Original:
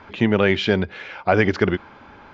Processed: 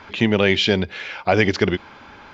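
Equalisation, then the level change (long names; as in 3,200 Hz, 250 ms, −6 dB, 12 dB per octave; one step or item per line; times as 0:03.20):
dynamic equaliser 1,400 Hz, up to −6 dB, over −36 dBFS, Q 1.7
high-shelf EQ 2,300 Hz +10.5 dB
0.0 dB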